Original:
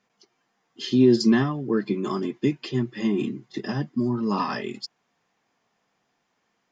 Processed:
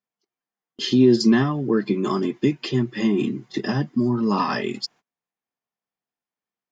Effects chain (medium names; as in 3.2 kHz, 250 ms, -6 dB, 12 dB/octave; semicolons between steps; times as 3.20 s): gate -51 dBFS, range -28 dB; in parallel at +1 dB: compression, threshold -28 dBFS, peak gain reduction 15 dB